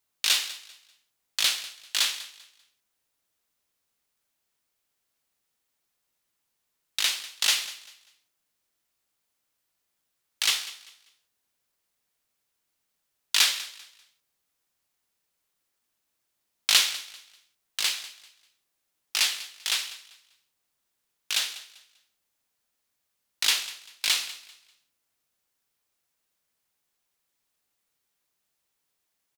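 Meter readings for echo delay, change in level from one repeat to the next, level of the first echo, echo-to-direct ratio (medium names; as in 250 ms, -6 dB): 196 ms, -11.0 dB, -17.0 dB, -16.5 dB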